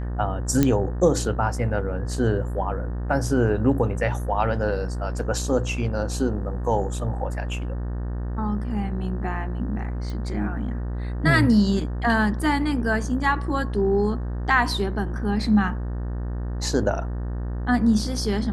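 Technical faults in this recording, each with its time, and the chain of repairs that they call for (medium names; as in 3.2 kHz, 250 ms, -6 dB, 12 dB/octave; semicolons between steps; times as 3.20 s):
buzz 60 Hz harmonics 31 -28 dBFS
0.63 s: pop -6 dBFS
10.10 s: pop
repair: de-click; de-hum 60 Hz, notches 31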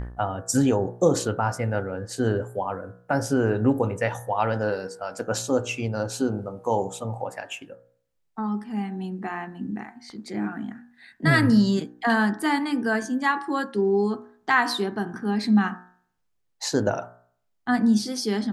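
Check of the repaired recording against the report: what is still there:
nothing left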